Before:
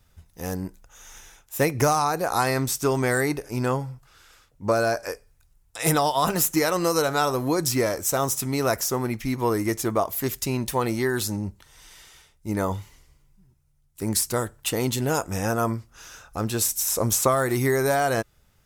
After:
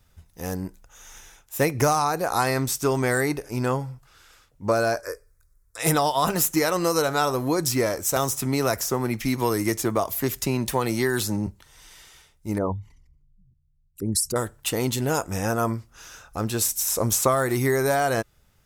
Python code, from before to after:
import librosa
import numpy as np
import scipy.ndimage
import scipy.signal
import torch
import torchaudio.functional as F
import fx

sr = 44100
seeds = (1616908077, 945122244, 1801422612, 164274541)

y = fx.fixed_phaser(x, sr, hz=790.0, stages=6, at=(5.0, 5.78))
y = fx.band_squash(y, sr, depth_pct=70, at=(8.16, 11.47))
y = fx.envelope_sharpen(y, sr, power=2.0, at=(12.58, 14.36))